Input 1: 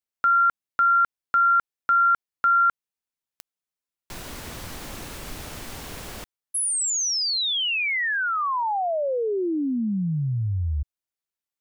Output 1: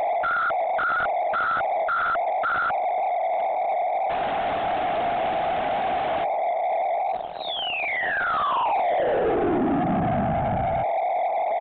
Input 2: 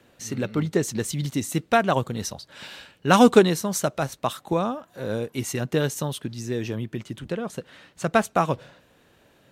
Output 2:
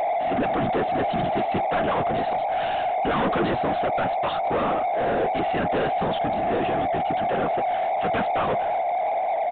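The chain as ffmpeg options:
ffmpeg -i in.wav -filter_complex "[0:a]highpass=100,aresample=11025,asoftclip=type=tanh:threshold=-18dB,aresample=44100,aeval=exprs='val(0)+0.0282*sin(2*PI*720*n/s)':channel_layout=same,afftfilt=real='hypot(re,im)*cos(2*PI*random(0))':imag='hypot(re,im)*sin(2*PI*random(1))':win_size=512:overlap=0.75,asplit=2[link_01][link_02];[link_02]highpass=frequency=720:poles=1,volume=31dB,asoftclip=type=tanh:threshold=-15.5dB[link_03];[link_01][link_03]amix=inputs=2:normalize=0,lowpass=frequency=1200:poles=1,volume=-6dB,aresample=8000,aresample=44100,volume=1dB" out.wav

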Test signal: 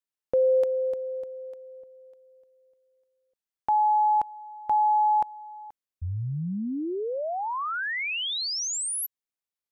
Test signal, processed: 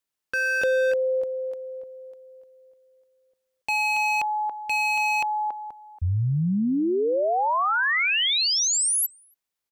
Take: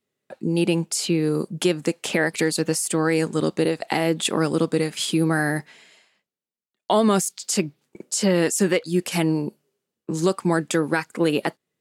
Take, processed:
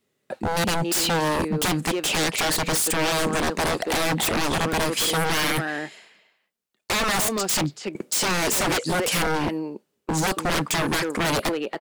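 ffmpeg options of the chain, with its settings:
ffmpeg -i in.wav -filter_complex "[0:a]asplit=2[link_01][link_02];[link_02]adelay=280,highpass=300,lowpass=3400,asoftclip=type=hard:threshold=-17dB,volume=-11dB[link_03];[link_01][link_03]amix=inputs=2:normalize=0,aeval=exprs='0.0596*(abs(mod(val(0)/0.0596+3,4)-2)-1)':channel_layout=same,volume=7dB" out.wav

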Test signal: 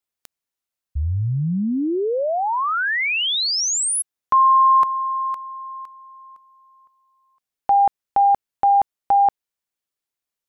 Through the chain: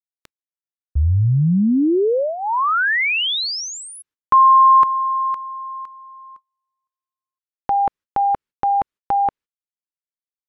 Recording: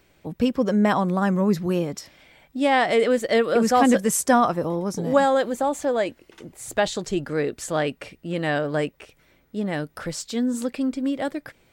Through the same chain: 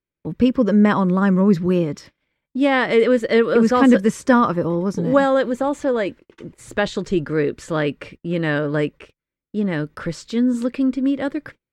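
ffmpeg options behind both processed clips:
ffmpeg -i in.wav -filter_complex "[0:a]agate=range=-34dB:threshold=-44dB:ratio=3:release=89:detection=rms,aemphasis=mode=reproduction:type=75kf,acrossover=split=5900[link_01][link_02];[link_02]acompressor=threshold=-45dB:ratio=4:attack=1:release=60[link_03];[link_01][link_03]amix=inputs=2:normalize=0,equalizer=frequency=720:width=3.6:gain=-13,volume=6dB" out.wav

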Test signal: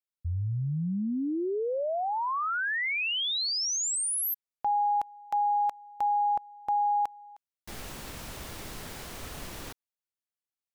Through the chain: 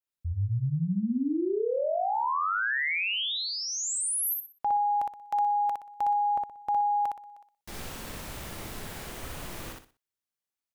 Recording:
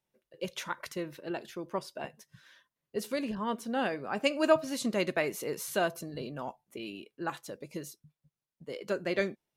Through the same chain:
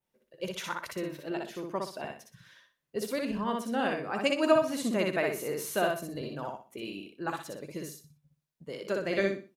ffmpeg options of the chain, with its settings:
ffmpeg -i in.wav -af "adynamicequalizer=threshold=0.00316:dfrequency=5100:dqfactor=1.1:tfrequency=5100:tqfactor=1.1:attack=5:release=100:ratio=0.375:range=3:mode=cutabove:tftype=bell,aecho=1:1:61|122|183|244:0.708|0.205|0.0595|0.0173" out.wav

